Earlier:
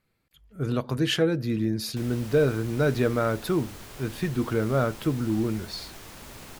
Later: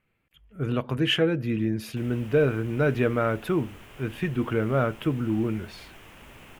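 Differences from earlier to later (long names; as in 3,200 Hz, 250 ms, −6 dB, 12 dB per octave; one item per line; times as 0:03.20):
background −4.0 dB
master: add high shelf with overshoot 3,500 Hz −6.5 dB, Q 3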